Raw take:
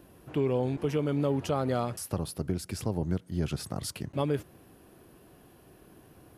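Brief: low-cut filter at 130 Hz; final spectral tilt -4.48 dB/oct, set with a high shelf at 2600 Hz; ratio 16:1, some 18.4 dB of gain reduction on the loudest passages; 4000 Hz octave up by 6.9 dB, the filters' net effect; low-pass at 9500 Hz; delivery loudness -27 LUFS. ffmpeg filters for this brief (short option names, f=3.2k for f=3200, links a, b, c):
-af "highpass=130,lowpass=9.5k,highshelf=f=2.6k:g=3.5,equalizer=f=4k:t=o:g=6,acompressor=threshold=-42dB:ratio=16,volume=21dB"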